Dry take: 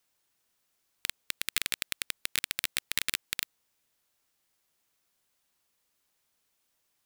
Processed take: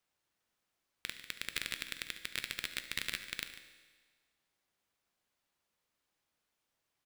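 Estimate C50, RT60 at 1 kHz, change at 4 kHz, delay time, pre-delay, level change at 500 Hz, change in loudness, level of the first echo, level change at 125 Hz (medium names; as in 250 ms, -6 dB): 8.5 dB, 1.5 s, -6.0 dB, 71 ms, 7 ms, -3.0 dB, -7.0 dB, -16.0 dB, -2.5 dB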